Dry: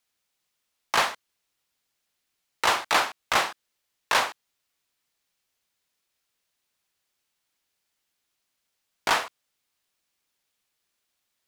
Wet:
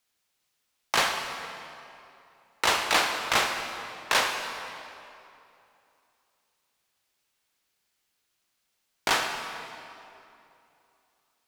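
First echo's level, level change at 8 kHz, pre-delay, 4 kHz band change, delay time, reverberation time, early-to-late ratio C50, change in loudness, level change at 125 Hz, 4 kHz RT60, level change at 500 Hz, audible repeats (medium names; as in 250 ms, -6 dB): no echo, +2.0 dB, 30 ms, +1.5 dB, no echo, 2.8 s, 4.5 dB, -1.5 dB, +2.0 dB, 2.0 s, 0.0 dB, no echo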